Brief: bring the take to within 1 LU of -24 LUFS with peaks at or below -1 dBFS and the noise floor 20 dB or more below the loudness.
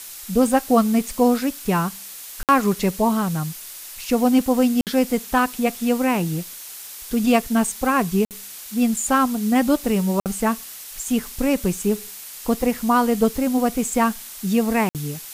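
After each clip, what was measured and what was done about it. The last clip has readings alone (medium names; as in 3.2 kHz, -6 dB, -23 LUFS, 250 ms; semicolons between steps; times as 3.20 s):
dropouts 5; longest dropout 58 ms; noise floor -37 dBFS; noise floor target -41 dBFS; loudness -21.0 LUFS; peak level -5.0 dBFS; loudness target -24.0 LUFS
-> interpolate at 2.43/4.81/8.25/10.20/14.89 s, 58 ms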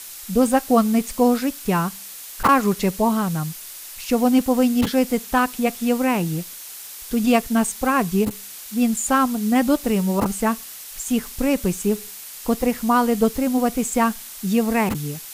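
dropouts 0; noise floor -37 dBFS; noise floor target -41 dBFS
-> noise print and reduce 6 dB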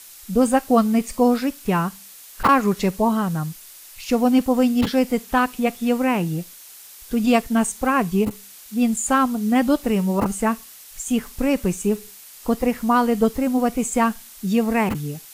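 noise floor -43 dBFS; loudness -21.0 LUFS; peak level -3.5 dBFS; loudness target -24.0 LUFS
-> trim -3 dB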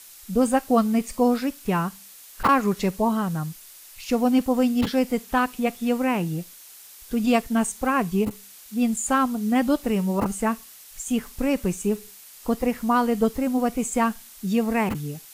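loudness -24.0 LUFS; peak level -6.5 dBFS; noise floor -46 dBFS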